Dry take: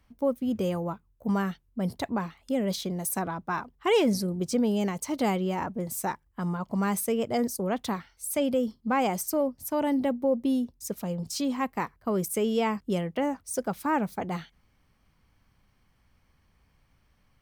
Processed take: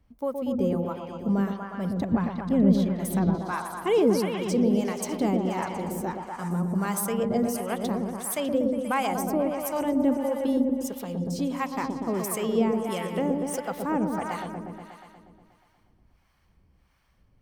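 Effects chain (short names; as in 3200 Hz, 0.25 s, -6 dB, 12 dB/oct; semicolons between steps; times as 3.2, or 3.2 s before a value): on a send: repeats that get brighter 0.12 s, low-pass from 750 Hz, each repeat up 1 oct, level -3 dB; on the sum: harmonic tremolo 1.5 Hz, depth 70%, crossover 650 Hz; 2.12–3.35 tone controls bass +11 dB, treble -7 dB; gain +2 dB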